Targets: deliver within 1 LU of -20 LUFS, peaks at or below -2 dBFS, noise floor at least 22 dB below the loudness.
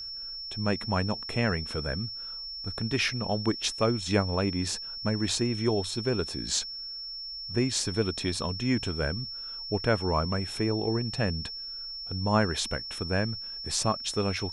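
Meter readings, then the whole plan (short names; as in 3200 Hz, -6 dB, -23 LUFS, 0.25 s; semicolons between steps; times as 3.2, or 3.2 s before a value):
steady tone 5400 Hz; tone level -36 dBFS; loudness -29.5 LUFS; peak -9.5 dBFS; loudness target -20.0 LUFS
-> notch 5400 Hz, Q 30; gain +9.5 dB; limiter -2 dBFS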